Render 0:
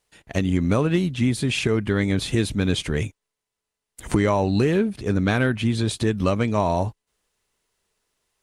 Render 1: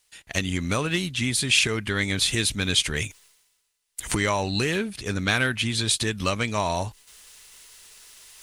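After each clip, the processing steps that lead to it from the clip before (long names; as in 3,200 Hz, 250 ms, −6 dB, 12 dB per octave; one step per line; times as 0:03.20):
low-shelf EQ 100 Hz +7.5 dB
reversed playback
upward compression, threshold −37 dBFS
reversed playback
tilt shelving filter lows −9.5 dB, about 1,200 Hz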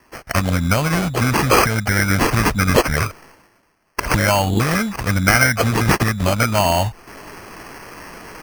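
comb filter 1.3 ms, depth 82%
in parallel at +1 dB: downward compressor, threshold −30 dBFS, peak gain reduction 16 dB
on the sum: decimation without filtering 12×
level +3.5 dB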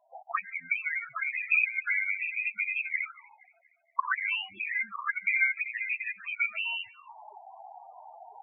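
envelope filter 680–2,500 Hz, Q 5.5, up, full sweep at −12.5 dBFS
feedback echo with a band-pass in the loop 236 ms, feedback 50%, band-pass 1,700 Hz, level −22 dB
spectral peaks only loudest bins 8
level +2 dB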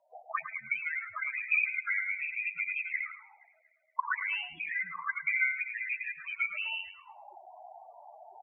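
frequency shifter −37 Hz
on a send: repeating echo 108 ms, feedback 22%, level −11 dB
on the sum: level −3 dB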